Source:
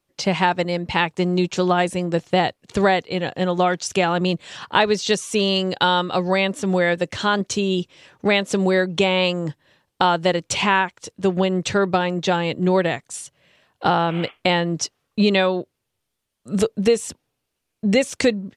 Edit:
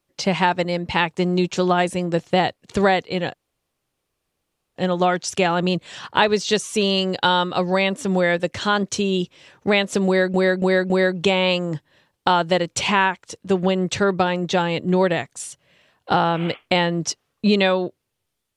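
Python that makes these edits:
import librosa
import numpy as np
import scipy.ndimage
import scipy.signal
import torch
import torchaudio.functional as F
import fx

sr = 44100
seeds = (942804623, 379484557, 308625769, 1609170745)

y = fx.edit(x, sr, fx.insert_room_tone(at_s=3.34, length_s=1.42),
    fx.repeat(start_s=8.64, length_s=0.28, count=4), tone=tone)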